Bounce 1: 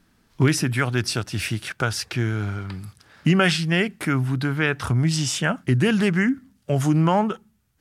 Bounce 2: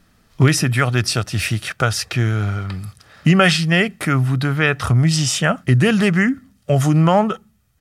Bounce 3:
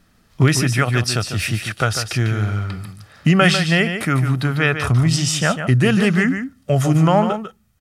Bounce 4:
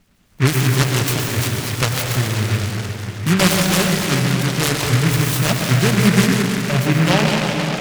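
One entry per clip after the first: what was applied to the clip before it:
comb 1.6 ms, depth 34%; trim +5 dB
delay 148 ms -8.5 dB; trim -1 dB
harmonic tremolo 8.7 Hz, depth 50%, crossover 1.8 kHz; plate-style reverb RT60 4.6 s, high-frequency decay 0.45×, pre-delay 90 ms, DRR 0.5 dB; delay time shaken by noise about 1.7 kHz, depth 0.21 ms

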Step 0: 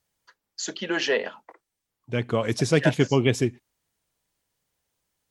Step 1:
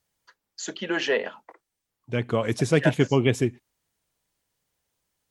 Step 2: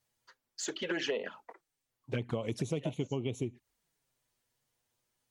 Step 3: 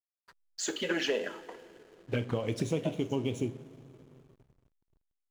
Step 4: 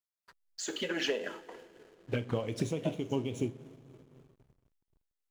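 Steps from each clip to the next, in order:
dynamic bell 5 kHz, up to -6 dB, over -46 dBFS, Q 1.6
touch-sensitive flanger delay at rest 8.3 ms, full sweep at -21 dBFS; compression 12:1, threshold -30 dBFS, peak gain reduction 15.5 dB
two-slope reverb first 0.37 s, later 4.9 s, from -18 dB, DRR 6.5 dB; hysteresis with a dead band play -51.5 dBFS; trim +3 dB
tremolo 3.8 Hz, depth 41%

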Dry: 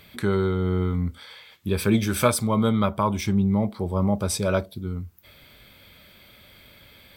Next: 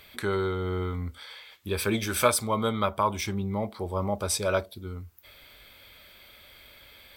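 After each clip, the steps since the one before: peaking EQ 160 Hz -12.5 dB 1.7 oct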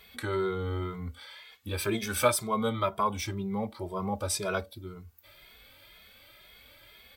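endless flanger 2.4 ms +2 Hz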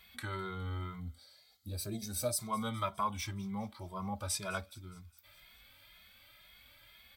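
time-frequency box 1.01–2.40 s, 810–3700 Hz -17 dB; peaking EQ 420 Hz -12.5 dB 0.82 oct; feedback echo behind a high-pass 207 ms, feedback 60%, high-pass 2.8 kHz, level -20 dB; trim -4.5 dB

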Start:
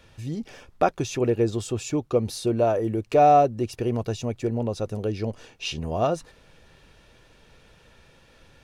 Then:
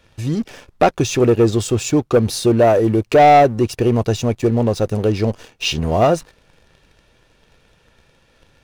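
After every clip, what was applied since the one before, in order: waveshaping leveller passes 2; trim +3 dB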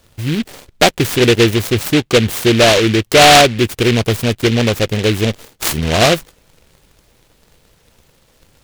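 delay time shaken by noise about 2.5 kHz, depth 0.17 ms; trim +2.5 dB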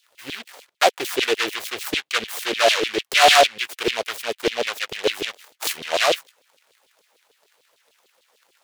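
LFO high-pass saw down 6.7 Hz 400–3700 Hz; trim -8.5 dB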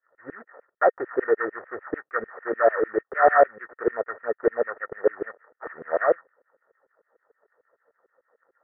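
rippled Chebyshev low-pass 1.9 kHz, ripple 9 dB; trim +2.5 dB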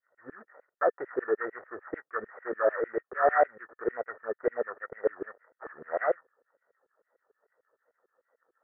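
wow and flutter 86 cents; trim -6.5 dB

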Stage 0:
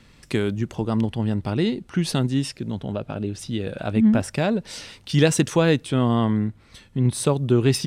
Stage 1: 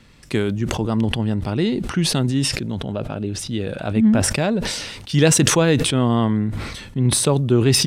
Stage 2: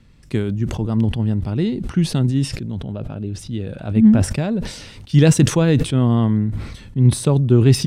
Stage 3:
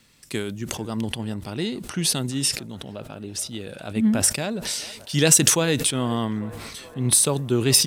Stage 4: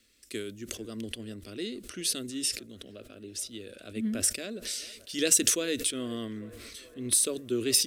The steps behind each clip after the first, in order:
decay stretcher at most 41 dB/s; trim +1.5 dB
bass shelf 270 Hz +11.5 dB; upward expansion 1.5:1, over -17 dBFS; trim -2.5 dB
RIAA curve recording; feedback echo behind a band-pass 424 ms, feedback 67%, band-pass 810 Hz, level -17 dB; trim -1 dB
static phaser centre 360 Hz, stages 4; trim -6.5 dB

